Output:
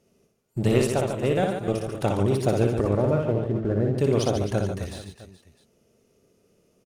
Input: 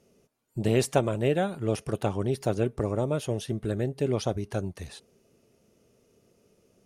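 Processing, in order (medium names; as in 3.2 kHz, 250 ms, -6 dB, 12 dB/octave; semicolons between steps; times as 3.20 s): 2.82–3.96 s: low-pass 3 kHz -> 1.3 kHz 24 dB/octave; waveshaping leveller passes 1; 0.78–1.98 s: level held to a coarse grid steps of 11 dB; reverse bouncing-ball echo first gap 60 ms, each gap 1.4×, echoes 5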